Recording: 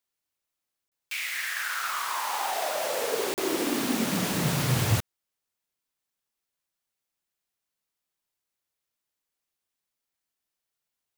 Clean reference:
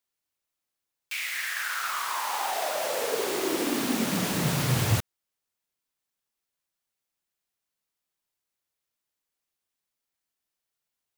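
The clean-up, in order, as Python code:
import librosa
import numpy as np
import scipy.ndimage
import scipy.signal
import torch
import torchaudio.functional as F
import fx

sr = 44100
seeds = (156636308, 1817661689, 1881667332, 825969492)

y = fx.fix_interpolate(x, sr, at_s=(0.88, 3.34), length_ms=38.0)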